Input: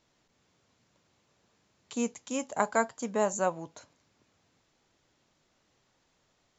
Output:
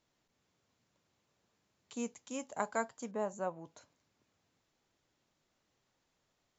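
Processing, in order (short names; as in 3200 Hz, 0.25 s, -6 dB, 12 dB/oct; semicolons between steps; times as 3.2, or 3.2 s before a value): 3.11–3.65 high shelf 2400 Hz -12 dB; gain -8 dB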